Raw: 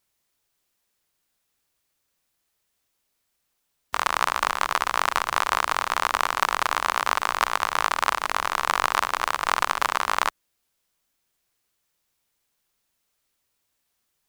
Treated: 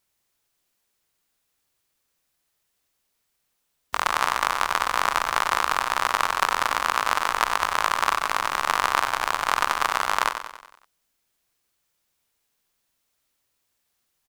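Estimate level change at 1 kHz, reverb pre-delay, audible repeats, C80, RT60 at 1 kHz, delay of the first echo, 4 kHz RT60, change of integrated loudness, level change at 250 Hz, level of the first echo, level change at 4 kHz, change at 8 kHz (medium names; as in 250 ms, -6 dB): +1.0 dB, no reverb, 5, no reverb, no reverb, 93 ms, no reverb, +1.0 dB, +0.5 dB, -9.0 dB, +0.5 dB, +0.5 dB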